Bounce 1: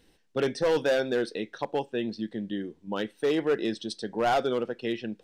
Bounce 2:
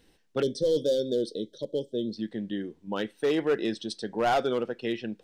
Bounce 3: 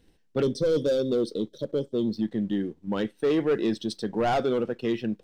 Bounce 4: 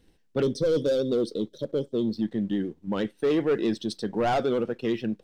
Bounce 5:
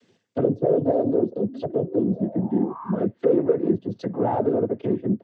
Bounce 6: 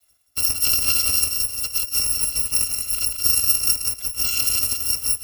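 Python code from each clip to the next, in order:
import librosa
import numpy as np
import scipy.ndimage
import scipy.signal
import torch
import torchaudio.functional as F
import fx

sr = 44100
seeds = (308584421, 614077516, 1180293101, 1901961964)

y1 = fx.spec_box(x, sr, start_s=0.42, length_s=1.75, low_hz=640.0, high_hz=3000.0, gain_db=-26)
y2 = fx.leveller(y1, sr, passes=1)
y2 = fx.low_shelf(y2, sr, hz=340.0, db=9.0)
y2 = y2 * 10.0 ** (-3.5 / 20.0)
y3 = fx.vibrato(y2, sr, rate_hz=11.0, depth_cents=39.0)
y4 = fx.spec_paint(y3, sr, seeds[0], shape='rise', start_s=1.46, length_s=1.59, low_hz=240.0, high_hz=1300.0, level_db=-42.0)
y4 = fx.env_lowpass_down(y4, sr, base_hz=640.0, full_db=-25.0)
y4 = fx.noise_vocoder(y4, sr, seeds[1], bands=16)
y4 = y4 * 10.0 ** (5.0 / 20.0)
y5 = fx.bit_reversed(y4, sr, seeds[2], block=256)
y5 = fx.echo_feedback(y5, sr, ms=176, feedback_pct=38, wet_db=-5.0)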